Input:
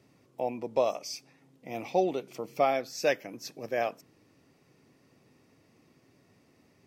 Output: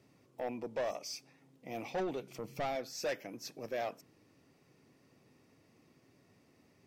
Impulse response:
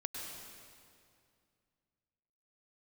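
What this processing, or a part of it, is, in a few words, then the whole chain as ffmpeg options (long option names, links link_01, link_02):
saturation between pre-emphasis and de-emphasis: -filter_complex "[0:a]highshelf=frequency=8000:gain=11,asoftclip=type=tanh:threshold=-27.5dB,highshelf=frequency=8000:gain=-11,asettb=1/sr,asplit=3[link_01][link_02][link_03];[link_01]atrim=end=1.884[link_04];[link_02]atrim=start=1.88:end=2.76,asetpts=PTS-STARTPTS,afade=type=in:duration=0.004:curve=qsin,afade=type=out:start_time=0.876:duration=0.004:curve=qsin,asubboost=boost=11.5:cutoff=190[link_05];[link_03]atrim=start=2.756[link_06];[link_04][link_05]acrossfade=duration=0.004:curve1=hsin:curve2=qsin[link_07];[link_07][link_06]acrossfade=duration=0.004:curve1=qsin:curve2=hsin,volume=-3dB"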